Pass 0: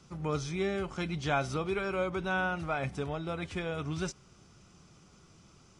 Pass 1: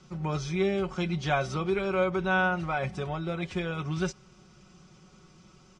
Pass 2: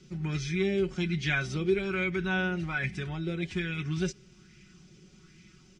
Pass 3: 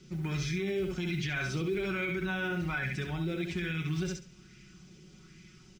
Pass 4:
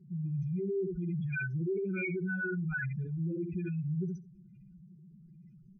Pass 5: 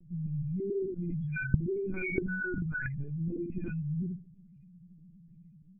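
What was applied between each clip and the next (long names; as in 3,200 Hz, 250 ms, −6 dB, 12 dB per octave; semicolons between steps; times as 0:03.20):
low-pass filter 6,600 Hz 12 dB per octave; comb filter 5.4 ms; level +1.5 dB
flat-topped bell 780 Hz −15.5 dB; auto-filter bell 1.2 Hz 450–2,200 Hz +10 dB
noise that follows the level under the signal 34 dB; on a send: repeating echo 68 ms, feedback 20%, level −6 dB; on the sum: brickwall limiter −24.5 dBFS, peak gain reduction 8.5 dB
expanding power law on the bin magnitudes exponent 3.8
linear-prediction vocoder at 8 kHz pitch kept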